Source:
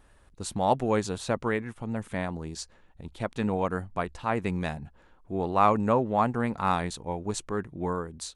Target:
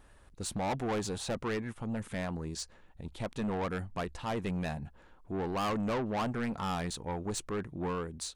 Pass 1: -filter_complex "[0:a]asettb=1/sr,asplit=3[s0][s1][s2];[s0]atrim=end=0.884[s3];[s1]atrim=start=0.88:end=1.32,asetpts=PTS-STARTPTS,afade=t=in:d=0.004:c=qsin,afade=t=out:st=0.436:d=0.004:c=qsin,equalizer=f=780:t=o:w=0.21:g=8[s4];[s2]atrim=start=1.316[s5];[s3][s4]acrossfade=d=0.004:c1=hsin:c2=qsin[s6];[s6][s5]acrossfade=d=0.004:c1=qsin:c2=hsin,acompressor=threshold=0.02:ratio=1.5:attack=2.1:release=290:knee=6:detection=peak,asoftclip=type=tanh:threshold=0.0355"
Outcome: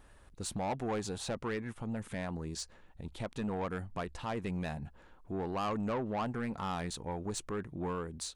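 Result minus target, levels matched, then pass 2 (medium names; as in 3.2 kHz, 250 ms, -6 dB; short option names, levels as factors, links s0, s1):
compression: peak gain reduction +8 dB
-filter_complex "[0:a]asettb=1/sr,asplit=3[s0][s1][s2];[s0]atrim=end=0.884[s3];[s1]atrim=start=0.88:end=1.32,asetpts=PTS-STARTPTS,afade=t=in:d=0.004:c=qsin,afade=t=out:st=0.436:d=0.004:c=qsin,equalizer=f=780:t=o:w=0.21:g=8[s4];[s2]atrim=start=1.316[s5];[s3][s4]acrossfade=d=0.004:c1=hsin:c2=qsin[s6];[s6][s5]acrossfade=d=0.004:c1=qsin:c2=hsin,asoftclip=type=tanh:threshold=0.0355"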